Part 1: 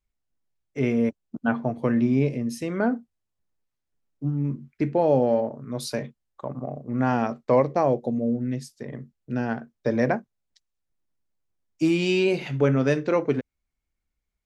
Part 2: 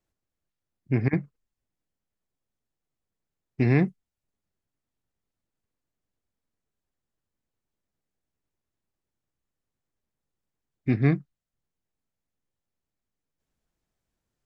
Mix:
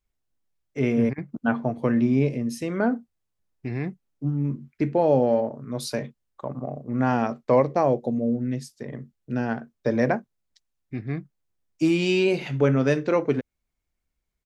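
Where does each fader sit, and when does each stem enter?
+0.5, -8.5 dB; 0.00, 0.05 s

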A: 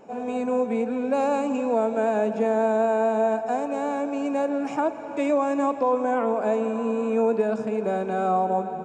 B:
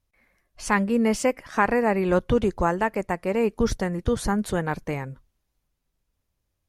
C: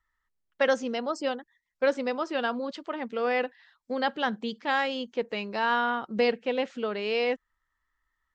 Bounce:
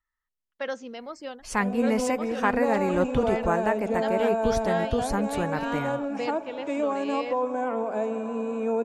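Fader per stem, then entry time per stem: -4.5, -3.5, -8.0 dB; 1.50, 0.85, 0.00 s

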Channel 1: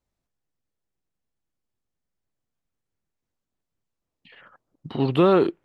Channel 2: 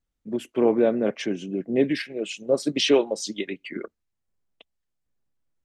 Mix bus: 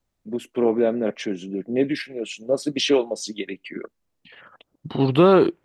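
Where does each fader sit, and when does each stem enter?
+3.0, 0.0 dB; 0.00, 0.00 s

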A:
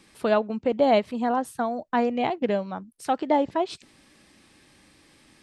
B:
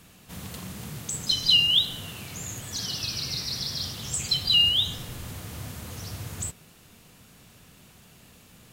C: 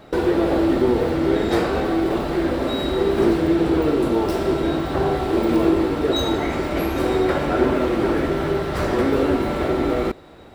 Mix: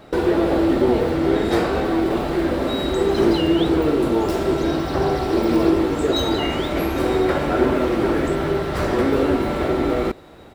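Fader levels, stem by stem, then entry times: -11.0, -12.5, +0.5 dB; 0.00, 1.85, 0.00 s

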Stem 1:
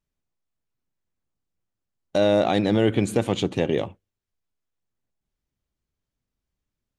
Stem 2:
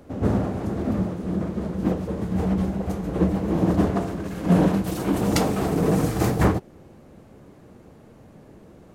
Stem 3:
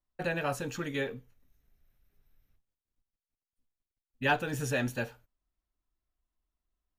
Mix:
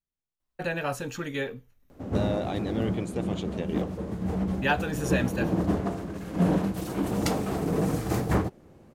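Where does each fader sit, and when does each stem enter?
-11.5, -5.5, +2.0 dB; 0.00, 1.90, 0.40 s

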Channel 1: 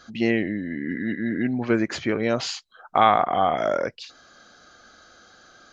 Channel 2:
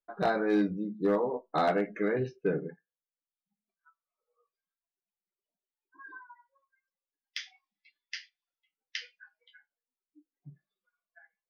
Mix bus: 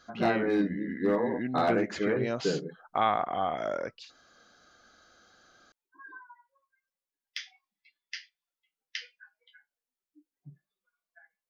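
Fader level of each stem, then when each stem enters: -9.0, 0.0 dB; 0.00, 0.00 s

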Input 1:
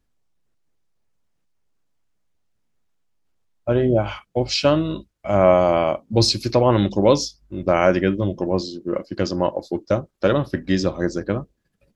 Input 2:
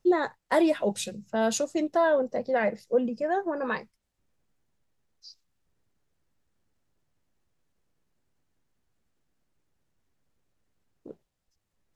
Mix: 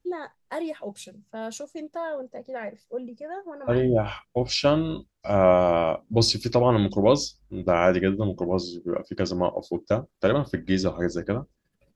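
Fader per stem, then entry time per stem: -3.5, -8.5 dB; 0.00, 0.00 s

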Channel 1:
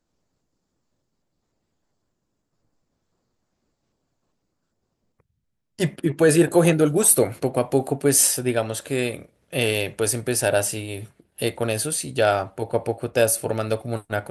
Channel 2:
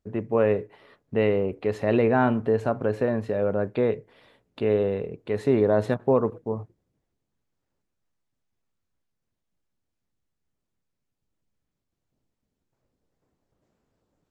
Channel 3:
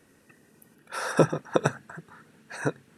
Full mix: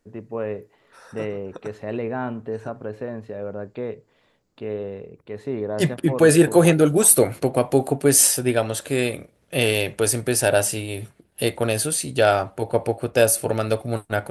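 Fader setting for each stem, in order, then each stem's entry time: +2.0, -6.5, -16.0 dB; 0.00, 0.00, 0.00 s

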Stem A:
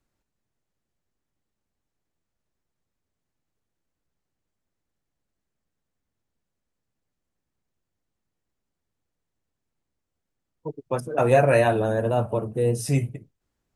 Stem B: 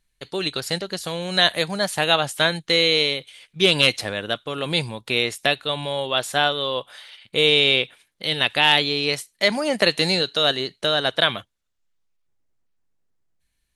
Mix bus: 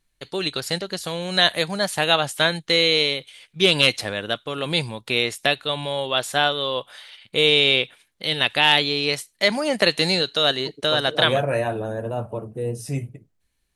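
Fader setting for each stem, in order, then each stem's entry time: -4.5, 0.0 dB; 0.00, 0.00 s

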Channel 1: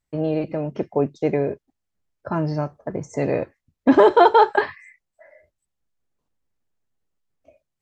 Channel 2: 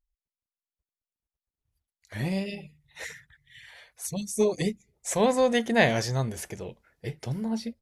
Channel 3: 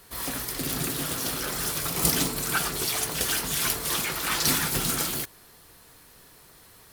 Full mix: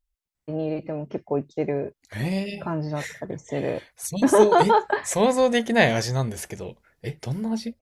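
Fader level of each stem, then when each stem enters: -4.5 dB, +3.0 dB, off; 0.35 s, 0.00 s, off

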